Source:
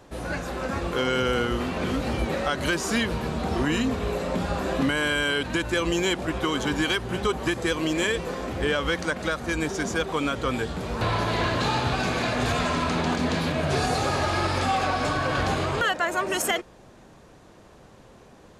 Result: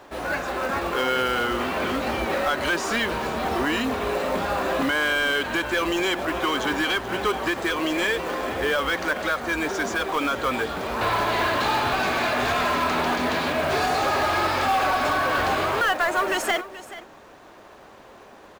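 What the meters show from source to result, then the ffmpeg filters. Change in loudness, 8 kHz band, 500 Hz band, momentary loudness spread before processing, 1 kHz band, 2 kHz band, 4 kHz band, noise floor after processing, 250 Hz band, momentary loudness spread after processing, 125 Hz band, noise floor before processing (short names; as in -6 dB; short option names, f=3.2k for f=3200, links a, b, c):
+2.0 dB, -1.5 dB, +1.5 dB, 4 LU, +4.5 dB, +4.0 dB, +1.5 dB, -47 dBFS, -1.5 dB, 4 LU, -7.5 dB, -51 dBFS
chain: -filter_complex "[0:a]asplit=2[a][b];[b]highpass=f=720:p=1,volume=16dB,asoftclip=type=tanh:threshold=-11.5dB[c];[a][c]amix=inputs=2:normalize=0,lowpass=f=2.1k:p=1,volume=-6dB,equalizer=f=150:w=1.7:g=-6,acrusher=bits=5:mode=log:mix=0:aa=0.000001,bandreject=f=490:w=15,asplit=2[d][e];[e]aecho=0:1:429:0.168[f];[d][f]amix=inputs=2:normalize=0,volume=-1dB"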